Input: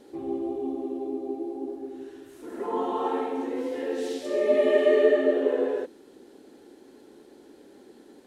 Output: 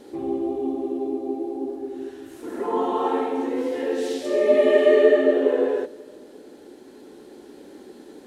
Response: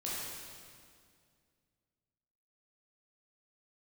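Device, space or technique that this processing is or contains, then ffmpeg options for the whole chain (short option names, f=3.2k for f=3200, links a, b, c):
ducked reverb: -filter_complex "[0:a]asplit=3[a][b][c];[1:a]atrim=start_sample=2205[d];[b][d]afir=irnorm=-1:irlink=0[e];[c]apad=whole_len=364446[f];[e][f]sidechaincompress=threshold=-36dB:ratio=8:attack=16:release=1470,volume=-6.5dB[g];[a][g]amix=inputs=2:normalize=0,volume=4dB"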